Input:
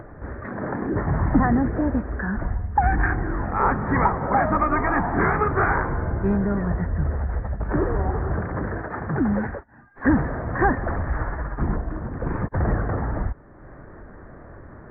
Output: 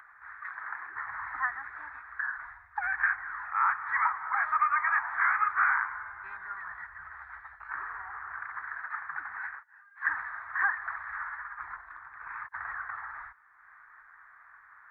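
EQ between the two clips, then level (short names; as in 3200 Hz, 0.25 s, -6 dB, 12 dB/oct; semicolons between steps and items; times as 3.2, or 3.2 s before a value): inverse Chebyshev high-pass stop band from 590 Hz, stop band 40 dB; 0.0 dB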